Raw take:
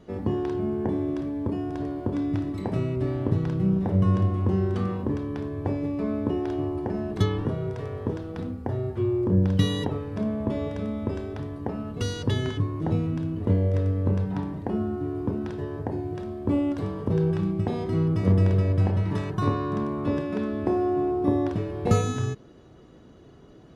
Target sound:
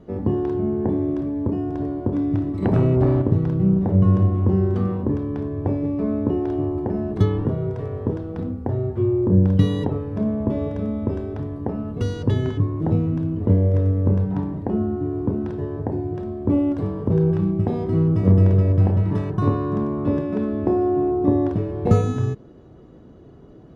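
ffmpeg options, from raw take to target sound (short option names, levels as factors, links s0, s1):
-filter_complex "[0:a]tiltshelf=f=1400:g=6.5,asettb=1/sr,asplit=3[s0][s1][s2];[s0]atrim=end=2.624[s3];[s1]atrim=start=2.62:end=3.22,asetpts=PTS-STARTPTS,afade=t=in:d=0.004:c=qsin,afade=t=out:st=0.596:d=0.004:c=qsin,aeval=exprs='0.422*(cos(1*acos(clip(val(0)/0.422,-1,1)))-cos(1*PI/2))+0.106*(cos(5*acos(clip(val(0)/0.422,-1,1)))-cos(5*PI/2))':c=same[s4];[s2]atrim=start=3.216[s5];[s3][s4]acrossfade=d=0.004:c1=hsin:c2=qsin[s6];[s6][s5]acrossfade=d=0.004:c1=qsin:c2=hsin,volume=0.891"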